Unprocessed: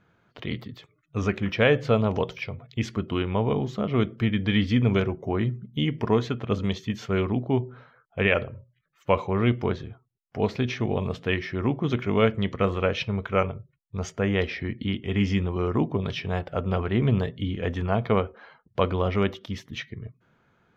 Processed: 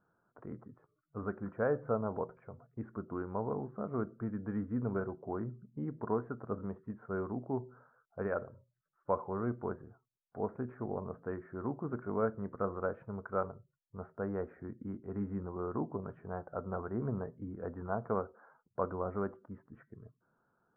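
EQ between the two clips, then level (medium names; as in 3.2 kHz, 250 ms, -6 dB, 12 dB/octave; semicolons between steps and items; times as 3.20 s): Chebyshev low-pass 1.5 kHz, order 5; peaking EQ 63 Hz -10.5 dB 2.8 oct; -8.5 dB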